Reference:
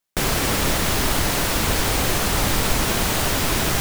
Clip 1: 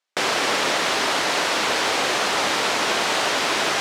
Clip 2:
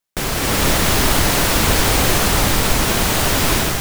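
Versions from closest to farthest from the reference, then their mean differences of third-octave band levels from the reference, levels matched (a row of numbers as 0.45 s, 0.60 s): 2, 1; 1.0 dB, 7.0 dB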